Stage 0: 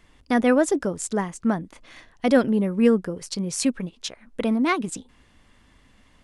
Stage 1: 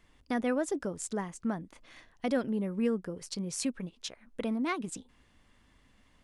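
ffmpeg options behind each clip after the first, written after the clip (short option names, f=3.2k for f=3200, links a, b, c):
-af "acompressor=threshold=-25dB:ratio=1.5,volume=-7.5dB"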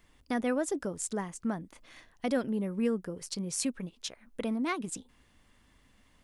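-af "highshelf=f=9.7k:g=8.5"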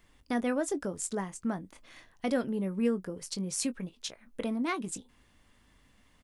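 -filter_complex "[0:a]asplit=2[a][b];[b]adelay=21,volume=-13dB[c];[a][c]amix=inputs=2:normalize=0"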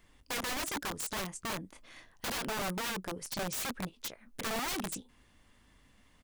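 -af "aeval=exprs='(mod(33.5*val(0)+1,2)-1)/33.5':c=same"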